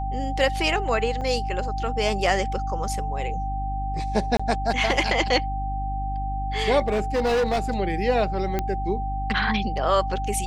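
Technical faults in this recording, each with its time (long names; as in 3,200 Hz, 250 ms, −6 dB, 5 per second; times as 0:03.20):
mains hum 50 Hz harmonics 6 −29 dBFS
whistle 780 Hz −29 dBFS
0:01.21–0:01.22: drop-out 5.6 ms
0:04.37–0:04.39: drop-out 25 ms
0:06.82–0:07.60: clipping −18.5 dBFS
0:08.59: click −11 dBFS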